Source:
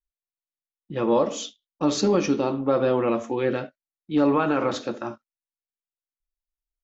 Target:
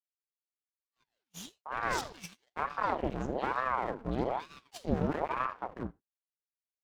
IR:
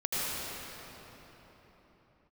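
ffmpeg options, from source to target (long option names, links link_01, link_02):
-filter_complex "[0:a]acrossover=split=460[link_01][link_02];[link_02]acompressor=threshold=-22dB:ratio=2.5[link_03];[link_01][link_03]amix=inputs=2:normalize=0,asubboost=boost=5.5:cutoff=180,acrossover=split=1800[link_04][link_05];[link_04]adelay=750[link_06];[link_06][link_05]amix=inputs=2:normalize=0,agate=range=-28dB:threshold=-40dB:ratio=16:detection=peak,asubboost=boost=11:cutoff=71,aeval=exprs='max(val(0),0)':channel_layout=same,asplit=2[link_07][link_08];[1:a]atrim=start_sample=2205,afade=type=out:start_time=0.14:duration=0.01,atrim=end_sample=6615[link_09];[link_08][link_09]afir=irnorm=-1:irlink=0,volume=-21dB[link_10];[link_07][link_10]amix=inputs=2:normalize=0,aeval=exprs='val(0)*sin(2*PI*670*n/s+670*0.75/1.1*sin(2*PI*1.1*n/s))':channel_layout=same,volume=-5dB"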